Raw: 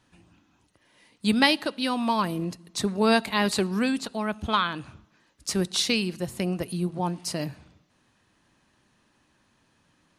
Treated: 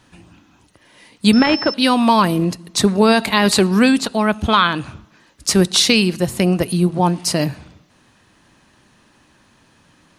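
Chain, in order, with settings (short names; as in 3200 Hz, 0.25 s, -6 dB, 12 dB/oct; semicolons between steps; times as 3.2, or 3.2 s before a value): maximiser +13 dB; 1.33–1.74 pulse-width modulation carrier 5300 Hz; gain -1 dB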